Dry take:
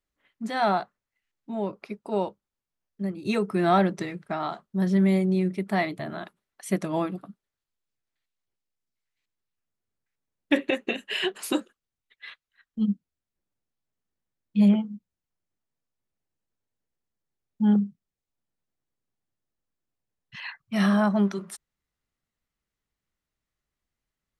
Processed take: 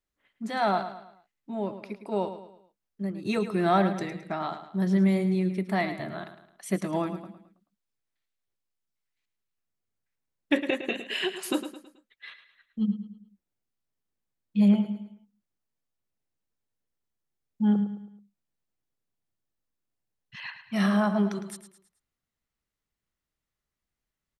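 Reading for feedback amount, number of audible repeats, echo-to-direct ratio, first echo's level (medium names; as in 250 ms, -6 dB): 41%, 4, -10.0 dB, -11.0 dB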